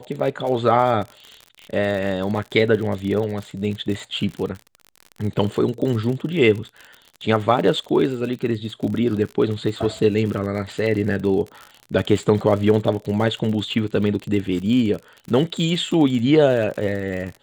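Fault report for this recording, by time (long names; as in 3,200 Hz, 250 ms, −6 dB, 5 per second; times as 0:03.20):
surface crackle 56 per second −28 dBFS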